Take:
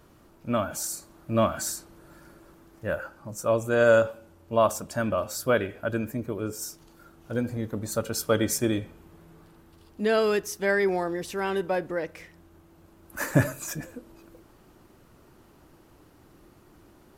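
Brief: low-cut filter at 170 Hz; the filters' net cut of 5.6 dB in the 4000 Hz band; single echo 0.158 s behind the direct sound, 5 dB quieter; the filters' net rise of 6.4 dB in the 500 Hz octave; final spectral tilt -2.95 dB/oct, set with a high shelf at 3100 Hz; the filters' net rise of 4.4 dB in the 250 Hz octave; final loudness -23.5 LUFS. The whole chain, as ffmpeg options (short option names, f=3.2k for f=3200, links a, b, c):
-af "highpass=170,equalizer=f=250:t=o:g=4.5,equalizer=f=500:t=o:g=7,highshelf=f=3.1k:g=-3.5,equalizer=f=4k:t=o:g=-5,aecho=1:1:158:0.562,volume=-2.5dB"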